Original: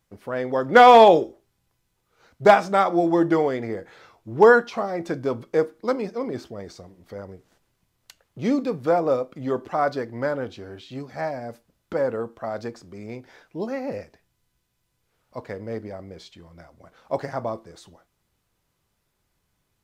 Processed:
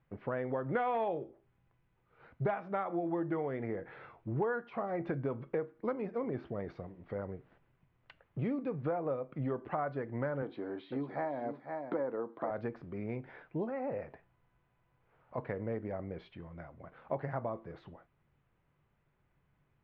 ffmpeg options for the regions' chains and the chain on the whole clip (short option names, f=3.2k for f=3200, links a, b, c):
-filter_complex "[0:a]asettb=1/sr,asplit=3[a][b][c];[a]atrim=end=10.424[d];[b]atrim=start=10.42:end=12.51,asetpts=PTS-STARTPTS,afade=t=in:d=0.004:c=qsin,afade=t=out:st=2.086:d=0.004:c=qsin,highpass=250,equalizer=f=300:t=q:w=4:g=8,equalizer=f=950:t=q:w=4:g=4,equalizer=f=1.5k:t=q:w=4:g=-3,equalizer=f=2.7k:t=q:w=4:g=-9,equalizer=f=3.9k:t=q:w=4:g=6,lowpass=f=5.5k:w=0.5412,lowpass=f=5.5k:w=1.3066,aecho=1:1:501:0.282,atrim=end_sample=92169[e];[c]atrim=start=12.506[f];[d][e]acrossfade=d=0.004:c1=hsin:c2=qsin[g];[g][f]acrossfade=d=0.004:c1=qsin:c2=hsin,asettb=1/sr,asplit=3[h][i][j];[h]atrim=end=13.694[k];[i]atrim=start=13.69:end=15.38,asetpts=PTS-STARTPTS,afade=t=in:d=0.004:c=qsin,afade=t=out:st=1.686:d=0.004:c=qsin,equalizer=f=830:t=o:w=1.9:g=7.5,acompressor=threshold=-34dB:ratio=2.5:attack=3.2:release=140:knee=1:detection=peak[l];[j]atrim=start=15.376[m];[k][l]acrossfade=d=0.004:c1=hsin:c2=qsin[n];[n][m]acrossfade=d=0.004:c1=qsin:c2=hsin,lowpass=f=2.5k:w=0.5412,lowpass=f=2.5k:w=1.3066,equalizer=f=140:w=5.6:g=9.5,acompressor=threshold=-31dB:ratio=6,volume=-1.5dB"